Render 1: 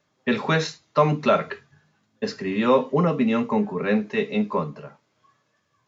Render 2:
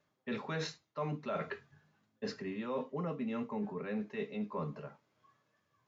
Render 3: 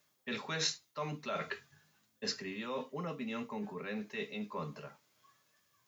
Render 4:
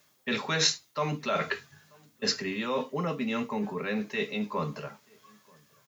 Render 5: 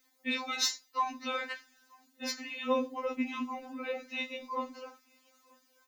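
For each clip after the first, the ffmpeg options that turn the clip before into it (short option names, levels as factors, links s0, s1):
-af "highshelf=f=4100:g=-6.5,areverse,acompressor=threshold=0.0355:ratio=5,areverse,volume=0.473"
-af "crystalizer=i=7:c=0,volume=0.668"
-filter_complex "[0:a]asplit=2[s0][s1];[s1]adelay=932.9,volume=0.0398,highshelf=f=4000:g=-21[s2];[s0][s2]amix=inputs=2:normalize=0,volume=2.82"
-filter_complex "[0:a]asplit=2[s0][s1];[s1]acrusher=bits=2:mix=0:aa=0.5,volume=0.335[s2];[s0][s2]amix=inputs=2:normalize=0,afftfilt=real='re*3.46*eq(mod(b,12),0)':imag='im*3.46*eq(mod(b,12),0)':win_size=2048:overlap=0.75,volume=0.794"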